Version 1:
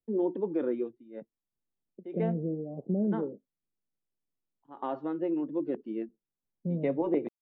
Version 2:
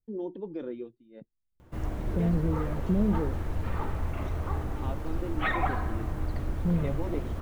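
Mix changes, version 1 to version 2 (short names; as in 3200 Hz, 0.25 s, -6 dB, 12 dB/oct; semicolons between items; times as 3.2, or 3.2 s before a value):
first voice -7.0 dB; background: unmuted; master: remove three-band isolator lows -20 dB, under 170 Hz, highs -15 dB, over 2300 Hz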